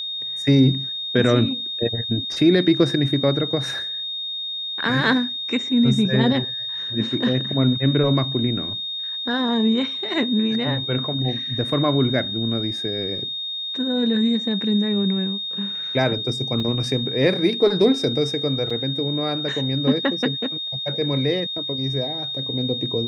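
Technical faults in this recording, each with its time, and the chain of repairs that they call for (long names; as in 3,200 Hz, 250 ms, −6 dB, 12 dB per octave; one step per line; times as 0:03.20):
whistle 3,700 Hz −26 dBFS
0:16.60: drop-out 2.3 ms
0:18.70: drop-out 4.5 ms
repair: notch filter 3,700 Hz, Q 30
repair the gap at 0:16.60, 2.3 ms
repair the gap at 0:18.70, 4.5 ms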